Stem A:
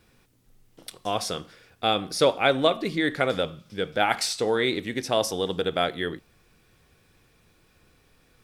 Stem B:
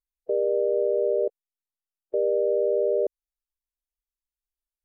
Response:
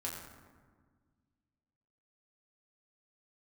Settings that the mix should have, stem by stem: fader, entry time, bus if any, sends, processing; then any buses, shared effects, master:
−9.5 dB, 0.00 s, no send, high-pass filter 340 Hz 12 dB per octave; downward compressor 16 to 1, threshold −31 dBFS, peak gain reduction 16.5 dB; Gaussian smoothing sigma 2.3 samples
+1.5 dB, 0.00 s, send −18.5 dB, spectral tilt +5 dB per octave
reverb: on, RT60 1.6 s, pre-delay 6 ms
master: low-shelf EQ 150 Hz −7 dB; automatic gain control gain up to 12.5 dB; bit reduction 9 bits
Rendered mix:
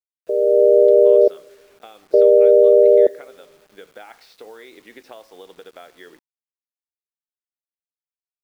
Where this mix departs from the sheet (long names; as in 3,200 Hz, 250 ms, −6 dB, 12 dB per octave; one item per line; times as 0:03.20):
stem A −9.5 dB → −17.0 dB
stem B: missing spectral tilt +5 dB per octave